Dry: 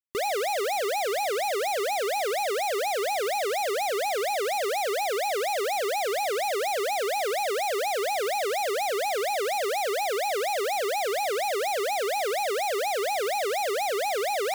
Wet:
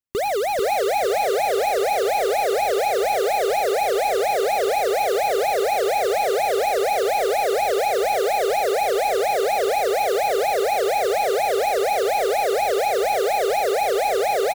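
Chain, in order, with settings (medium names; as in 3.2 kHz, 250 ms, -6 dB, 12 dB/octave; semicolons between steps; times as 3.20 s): bass shelf 260 Hz +11 dB; in parallel at -5.5 dB: Schmitt trigger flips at -32.5 dBFS; on the sum: feedback delay 442 ms, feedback 31%, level -4 dB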